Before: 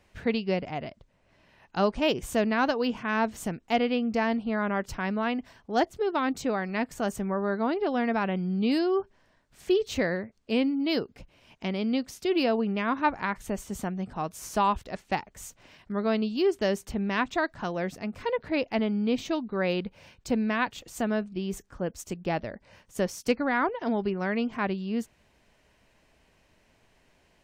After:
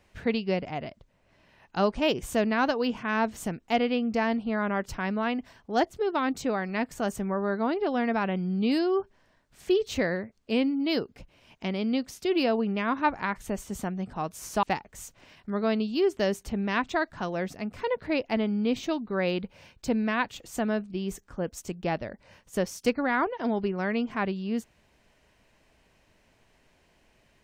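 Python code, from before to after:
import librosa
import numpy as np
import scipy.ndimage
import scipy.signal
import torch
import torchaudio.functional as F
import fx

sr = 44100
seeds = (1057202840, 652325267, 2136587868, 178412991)

y = fx.edit(x, sr, fx.cut(start_s=14.63, length_s=0.42), tone=tone)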